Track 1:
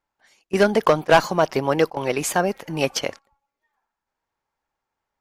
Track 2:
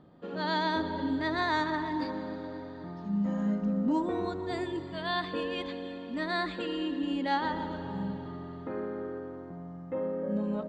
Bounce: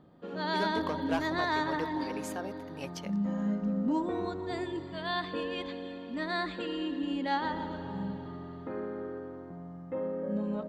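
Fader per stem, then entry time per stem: -19.0 dB, -1.5 dB; 0.00 s, 0.00 s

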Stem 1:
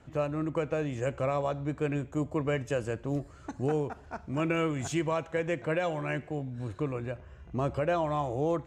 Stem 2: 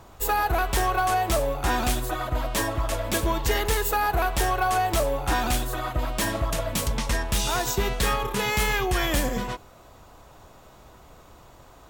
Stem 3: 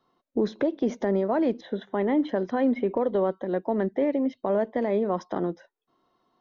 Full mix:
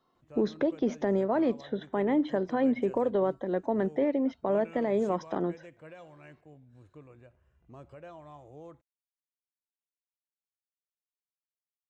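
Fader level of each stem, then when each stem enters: -19.0 dB, mute, -2.5 dB; 0.15 s, mute, 0.00 s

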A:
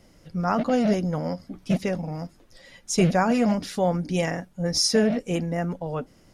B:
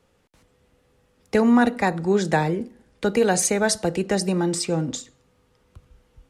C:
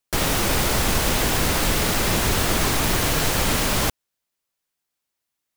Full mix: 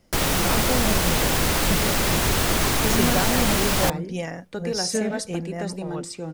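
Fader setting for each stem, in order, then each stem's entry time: -5.0 dB, -9.5 dB, -0.5 dB; 0.00 s, 1.50 s, 0.00 s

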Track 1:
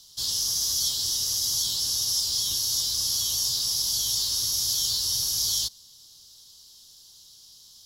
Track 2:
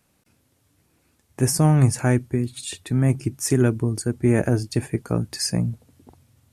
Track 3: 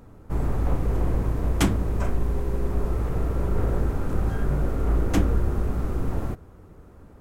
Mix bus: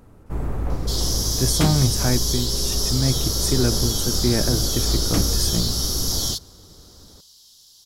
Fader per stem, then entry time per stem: +0.5 dB, -3.0 dB, -1.0 dB; 0.70 s, 0.00 s, 0.00 s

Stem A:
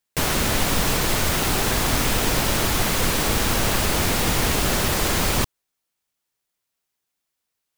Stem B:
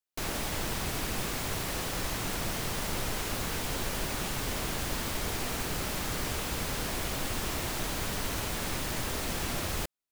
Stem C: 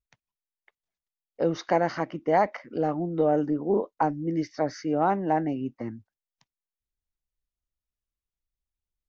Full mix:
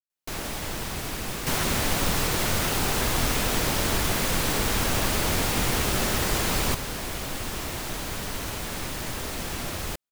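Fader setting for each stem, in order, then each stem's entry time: -4.5 dB, +1.0 dB, mute; 1.30 s, 0.10 s, mute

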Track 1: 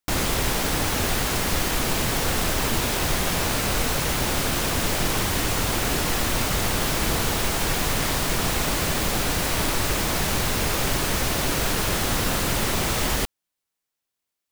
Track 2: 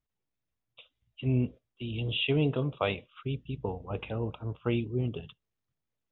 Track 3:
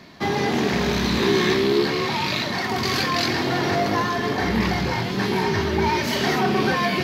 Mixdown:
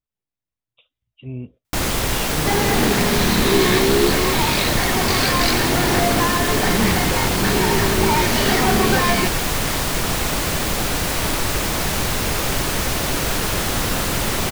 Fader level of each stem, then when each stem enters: +2.5 dB, -4.0 dB, +2.5 dB; 1.65 s, 0.00 s, 2.25 s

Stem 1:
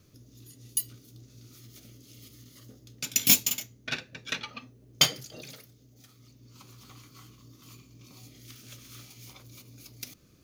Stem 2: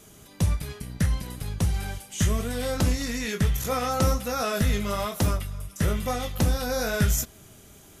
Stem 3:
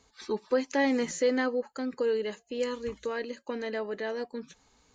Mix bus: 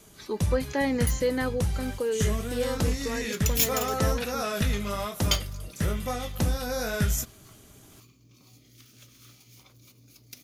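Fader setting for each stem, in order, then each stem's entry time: -5.0 dB, -3.0 dB, -0.5 dB; 0.30 s, 0.00 s, 0.00 s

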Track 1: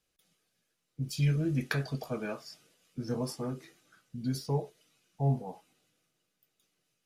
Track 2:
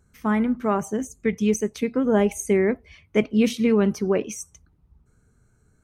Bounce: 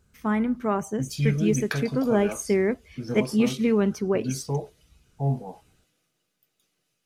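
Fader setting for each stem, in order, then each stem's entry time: +3.0 dB, -2.5 dB; 0.00 s, 0.00 s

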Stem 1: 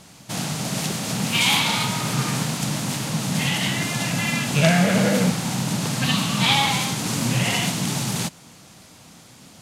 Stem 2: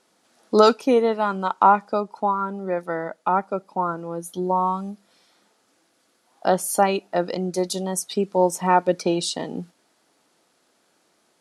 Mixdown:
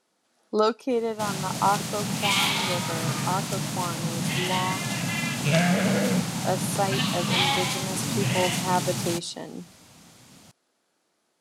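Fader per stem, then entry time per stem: -4.5 dB, -7.5 dB; 0.90 s, 0.00 s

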